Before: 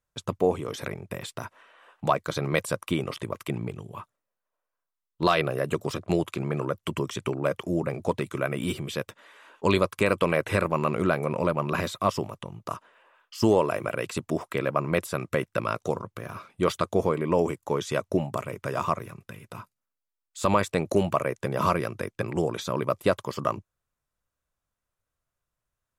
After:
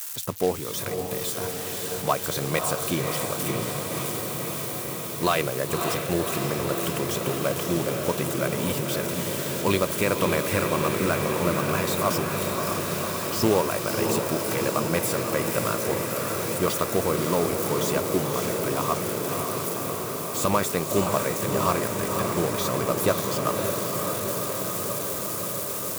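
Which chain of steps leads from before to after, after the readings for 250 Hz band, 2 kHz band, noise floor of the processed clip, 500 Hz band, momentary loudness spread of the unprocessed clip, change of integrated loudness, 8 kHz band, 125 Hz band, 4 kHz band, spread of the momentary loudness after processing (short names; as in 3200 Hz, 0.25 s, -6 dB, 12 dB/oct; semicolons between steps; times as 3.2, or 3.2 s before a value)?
+2.0 dB, +2.5 dB, -32 dBFS, +2.0 dB, 14 LU, +2.0 dB, +14.0 dB, +1.5 dB, +6.0 dB, 5 LU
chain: switching spikes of -23.5 dBFS; short-mantissa float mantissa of 2-bit; diffused feedback echo 0.569 s, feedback 80%, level -4.5 dB; gain -1 dB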